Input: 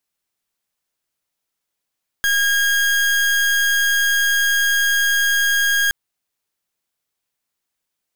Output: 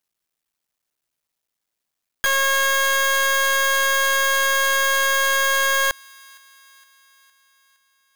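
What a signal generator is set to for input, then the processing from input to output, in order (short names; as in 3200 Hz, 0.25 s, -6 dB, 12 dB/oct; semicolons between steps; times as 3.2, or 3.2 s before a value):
pulse 1630 Hz, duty 37% -17 dBFS 3.67 s
cycle switcher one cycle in 3, muted; thin delay 0.463 s, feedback 57%, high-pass 1500 Hz, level -23.5 dB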